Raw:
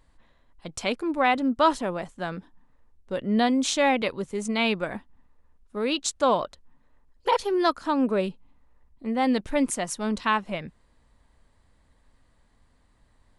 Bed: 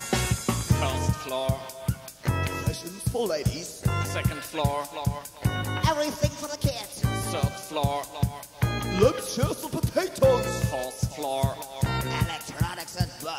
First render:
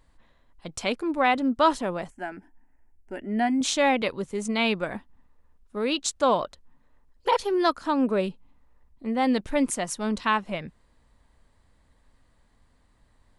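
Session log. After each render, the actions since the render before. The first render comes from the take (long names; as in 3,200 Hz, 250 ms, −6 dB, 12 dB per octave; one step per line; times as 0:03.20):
0:02.10–0:03.61: phaser with its sweep stopped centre 760 Hz, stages 8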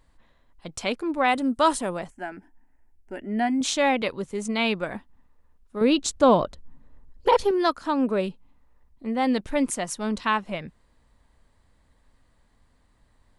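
0:01.28–0:01.99: parametric band 9,100 Hz +14.5 dB 0.67 octaves
0:05.81–0:07.51: low-shelf EQ 450 Hz +12 dB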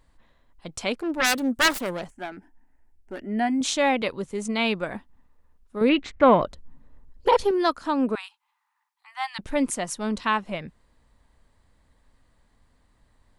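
0:00.96–0:03.20: phase distortion by the signal itself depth 0.67 ms
0:05.89–0:06.42: low-pass with resonance 2,100 Hz, resonance Q 5.8
0:08.15–0:09.39: Butterworth high-pass 800 Hz 96 dB per octave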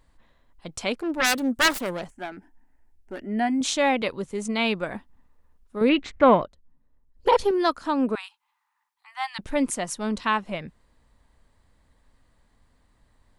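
0:06.34–0:07.28: duck −14.5 dB, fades 0.15 s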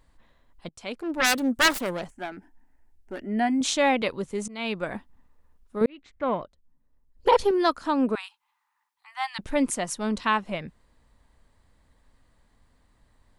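0:00.69–0:01.24: fade in, from −22.5 dB
0:04.48–0:04.89: fade in, from −21 dB
0:05.86–0:07.29: fade in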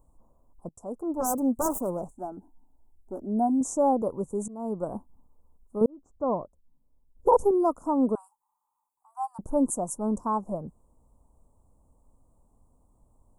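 inverse Chebyshev band-stop filter 1,800–4,300 Hz, stop band 50 dB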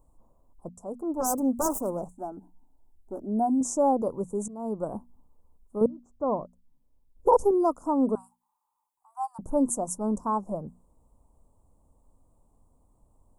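mains-hum notches 60/120/180/240 Hz
dynamic equaliser 4,700 Hz, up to +7 dB, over −55 dBFS, Q 1.5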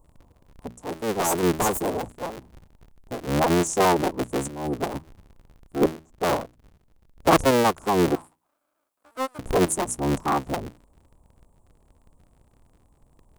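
sub-harmonics by changed cycles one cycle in 3, inverted
in parallel at −5 dB: hard clipping −20 dBFS, distortion −13 dB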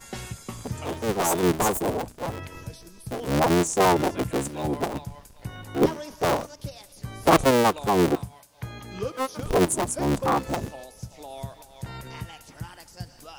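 mix in bed −11 dB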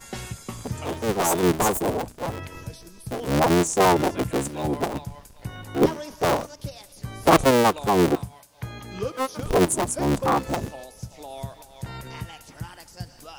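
level +1.5 dB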